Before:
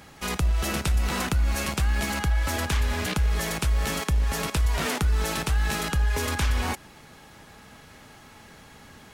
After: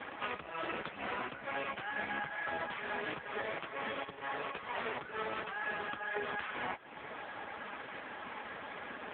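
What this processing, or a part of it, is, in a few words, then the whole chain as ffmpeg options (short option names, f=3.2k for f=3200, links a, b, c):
voicemail: -filter_complex "[0:a]asettb=1/sr,asplit=3[a][b][c];[a]atrim=end=4.054[d];[b]atrim=start=4.05:end=4.63,asetpts=PTS-STARTPTS,afade=t=in:d=0.004:c=qsin,afade=t=out:st=0.576:d=0.004:c=qsin,highpass=150[e];[c]atrim=start=4.626[f];[d][e]acrossfade=d=0.004:c1=hsin:c2=qsin[g];[g][f]acrossfade=d=0.004:c1=qsin:c2=hsin,highpass=350,lowpass=2.8k,acompressor=threshold=-44dB:ratio=8,volume=12dB" -ar 8000 -c:a libopencore_amrnb -b:a 5150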